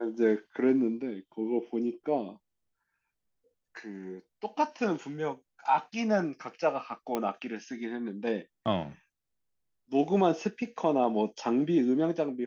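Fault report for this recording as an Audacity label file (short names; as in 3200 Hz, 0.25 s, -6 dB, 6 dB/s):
7.150000	7.150000	pop -16 dBFS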